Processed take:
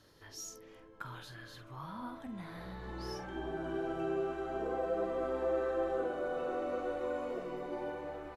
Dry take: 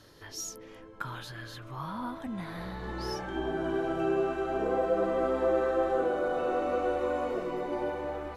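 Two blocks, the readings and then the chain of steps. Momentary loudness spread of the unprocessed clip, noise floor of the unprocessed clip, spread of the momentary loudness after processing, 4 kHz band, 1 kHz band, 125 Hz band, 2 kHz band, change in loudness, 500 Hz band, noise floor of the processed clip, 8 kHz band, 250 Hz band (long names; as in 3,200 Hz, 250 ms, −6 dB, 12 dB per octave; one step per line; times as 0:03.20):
12 LU, −49 dBFS, 13 LU, −7.0 dB, −7.5 dB, −6.5 dB, −7.0 dB, −6.5 dB, −6.5 dB, −56 dBFS, can't be measured, −7.0 dB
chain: double-tracking delay 48 ms −10 dB
level −7.5 dB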